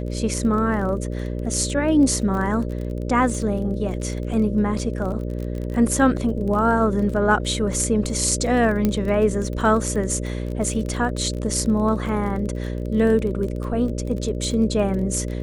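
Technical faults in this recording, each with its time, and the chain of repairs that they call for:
buzz 60 Hz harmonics 10 -27 dBFS
crackle 25/s -28 dBFS
8.85 pop -8 dBFS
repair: de-click; de-hum 60 Hz, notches 10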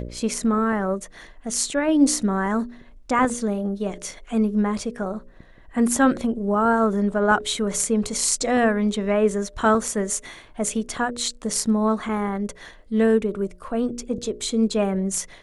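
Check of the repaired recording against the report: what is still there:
none

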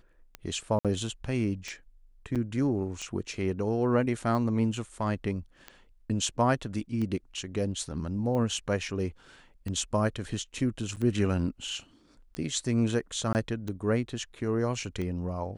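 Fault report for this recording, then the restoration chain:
tick 45 rpm -23 dBFS
0.79–0.85 gap 57 ms
2.35–2.36 gap 6.9 ms
10.96–10.97 gap 8 ms
13.33–13.35 gap 19 ms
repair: de-click; interpolate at 0.79, 57 ms; interpolate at 2.35, 6.9 ms; interpolate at 10.96, 8 ms; interpolate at 13.33, 19 ms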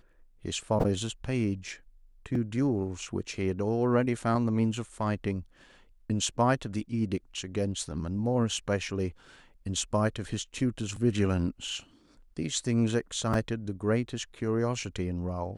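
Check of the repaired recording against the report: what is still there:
none

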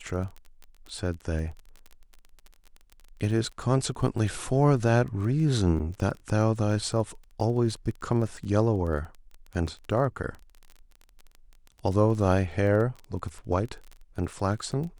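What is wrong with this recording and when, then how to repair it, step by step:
crackle 23/s -35 dBFS
5.79–5.8 gap 7.1 ms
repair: de-click; interpolate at 5.79, 7.1 ms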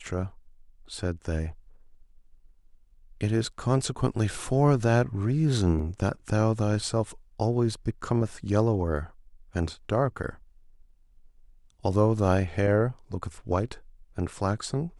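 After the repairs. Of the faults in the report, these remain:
none

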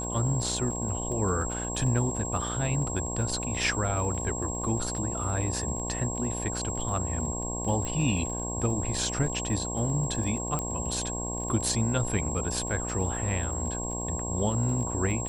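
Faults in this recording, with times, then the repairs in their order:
buzz 60 Hz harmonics 18 -35 dBFS
crackle 25/s -36 dBFS
tone 7600 Hz -34 dBFS
7.85 pop -20 dBFS
10.59 pop -16 dBFS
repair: de-click; de-hum 60 Hz, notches 18; notch 7600 Hz, Q 30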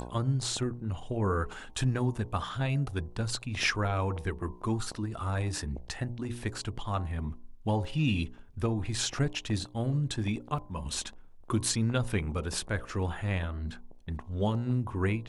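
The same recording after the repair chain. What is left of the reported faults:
7.85 pop
10.59 pop

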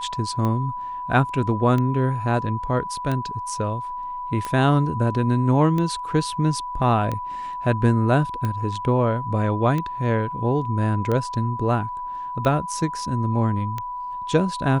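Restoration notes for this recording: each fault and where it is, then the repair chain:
tick 45 rpm -14 dBFS
tone 990 Hz -28 dBFS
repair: de-click; notch 990 Hz, Q 30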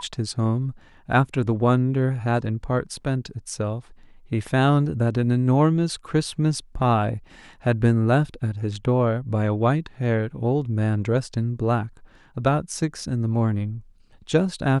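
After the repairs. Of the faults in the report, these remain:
none

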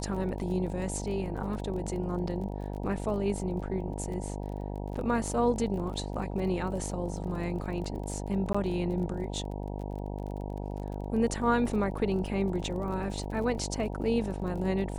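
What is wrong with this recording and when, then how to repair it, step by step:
buzz 50 Hz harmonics 19 -36 dBFS
crackle 32/s -39 dBFS
8.53–8.54 gap 15 ms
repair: de-click; de-hum 50 Hz, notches 19; interpolate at 8.53, 15 ms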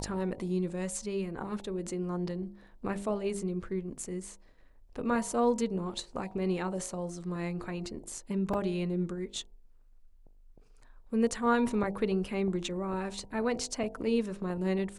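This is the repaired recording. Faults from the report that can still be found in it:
none

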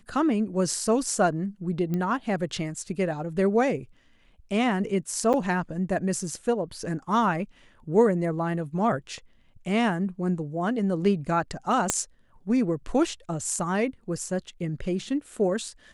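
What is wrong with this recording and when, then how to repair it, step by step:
1.94 pop -18 dBFS
5.33–5.34 gap 7.9 ms
11.9 pop -7 dBFS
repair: de-click; interpolate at 5.33, 7.9 ms

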